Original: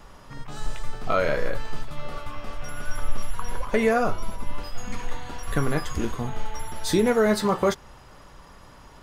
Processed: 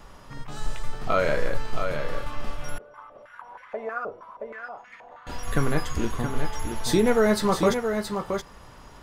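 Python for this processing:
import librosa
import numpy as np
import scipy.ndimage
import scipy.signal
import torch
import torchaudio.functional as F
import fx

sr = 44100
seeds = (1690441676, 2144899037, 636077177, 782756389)

y = x + 10.0 ** (-6.5 / 20.0) * np.pad(x, (int(673 * sr / 1000.0), 0))[:len(x)]
y = fx.filter_held_bandpass(y, sr, hz=6.3, low_hz=470.0, high_hz=1900.0, at=(2.78, 5.27))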